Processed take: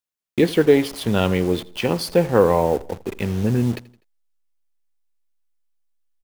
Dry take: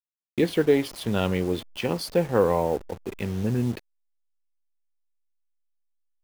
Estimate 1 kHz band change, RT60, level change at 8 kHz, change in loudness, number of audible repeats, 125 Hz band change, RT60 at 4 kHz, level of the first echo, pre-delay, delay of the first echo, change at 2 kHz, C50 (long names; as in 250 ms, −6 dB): +5.5 dB, no reverb audible, +5.5 dB, +5.5 dB, 3, +5.5 dB, no reverb audible, −21.0 dB, no reverb audible, 83 ms, +5.5 dB, no reverb audible